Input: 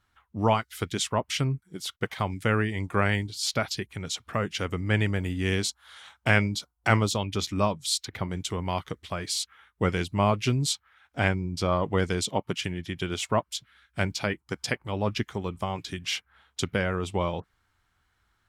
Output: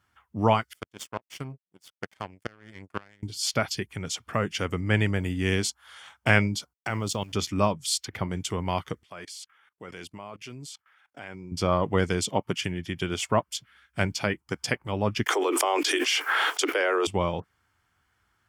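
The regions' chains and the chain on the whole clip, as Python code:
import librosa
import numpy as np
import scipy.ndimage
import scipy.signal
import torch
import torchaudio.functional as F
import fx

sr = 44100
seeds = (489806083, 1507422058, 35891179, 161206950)

y = fx.chain(x, sr, fx.power_curve(exponent=2.0),
    fx.gate_flip(shuts_db=-17.0, range_db=-25), at=(0.73, 3.23))
y = fx.chain(y, sr, fx.level_steps(step_db=15),
    fx.sample_gate(floor_db=-51.5), at=(6.73, 7.33))
y = fx.chain(y, sr, fx.highpass(hz=360.0, slope=6),
    fx.level_steps(step_db=21), at=(9.03, 11.52))
y = fx.chain(y, sr, fx.steep_highpass(hz=300.0, slope=96),
    fx.env_flatten(amount_pct=100), at=(15.26, 17.07))
y = scipy.signal.sosfilt(scipy.signal.butter(2, 71.0, 'highpass', fs=sr, output='sos'), y)
y = fx.notch(y, sr, hz=3900.0, q=6.3)
y = y * 10.0 ** (1.5 / 20.0)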